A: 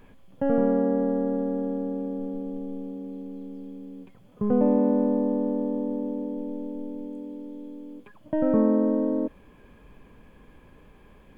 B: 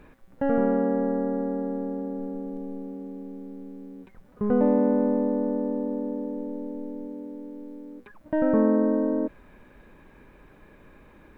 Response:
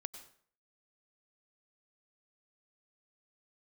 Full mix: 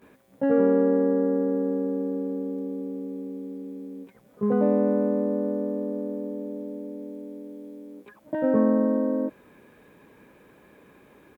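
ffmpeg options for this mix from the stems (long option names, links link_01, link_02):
-filter_complex "[0:a]equalizer=frequency=430:width=0.7:gain=13,volume=-11dB[link_01];[1:a]volume=-1,adelay=17,volume=-2dB[link_02];[link_01][link_02]amix=inputs=2:normalize=0,highpass=110,aemphasis=mode=production:type=cd"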